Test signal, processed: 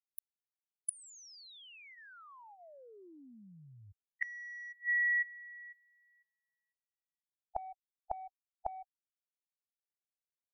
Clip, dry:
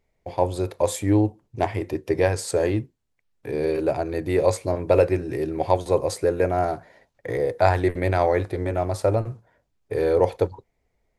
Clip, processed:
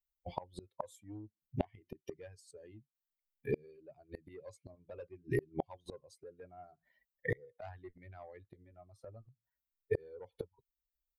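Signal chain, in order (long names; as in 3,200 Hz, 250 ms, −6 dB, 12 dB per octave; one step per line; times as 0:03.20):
spectral dynamics exaggerated over time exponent 2
soft clipping −14.5 dBFS
gate with flip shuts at −31 dBFS, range −35 dB
level +10 dB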